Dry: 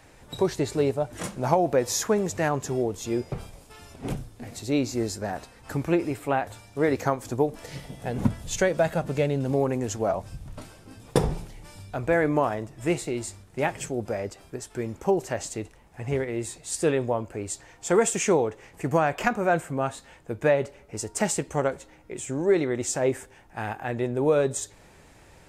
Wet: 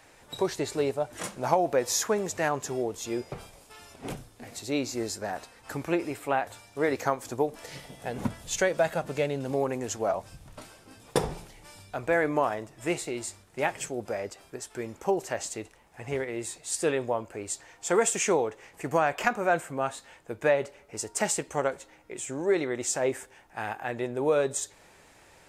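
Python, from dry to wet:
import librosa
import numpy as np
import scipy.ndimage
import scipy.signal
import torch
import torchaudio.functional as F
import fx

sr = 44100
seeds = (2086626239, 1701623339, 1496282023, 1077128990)

y = fx.low_shelf(x, sr, hz=280.0, db=-11.0)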